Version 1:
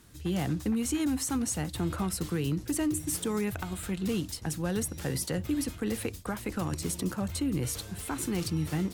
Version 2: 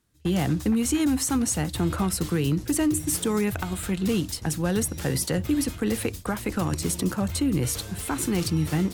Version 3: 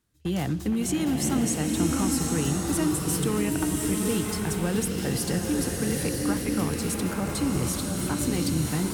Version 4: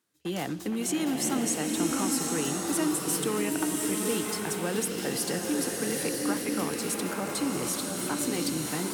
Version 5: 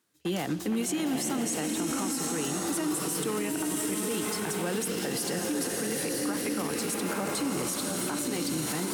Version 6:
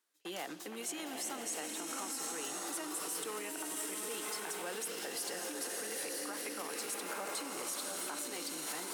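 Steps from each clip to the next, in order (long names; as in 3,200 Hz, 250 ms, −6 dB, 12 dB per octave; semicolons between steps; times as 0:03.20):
noise gate with hold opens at −35 dBFS; level +6 dB
slow-attack reverb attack 990 ms, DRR −0.5 dB; level −3.5 dB
high-pass filter 280 Hz 12 dB per octave
brickwall limiter −25 dBFS, peak gain reduction 9.5 dB; level +3.5 dB
high-pass filter 500 Hz 12 dB per octave; level −6.5 dB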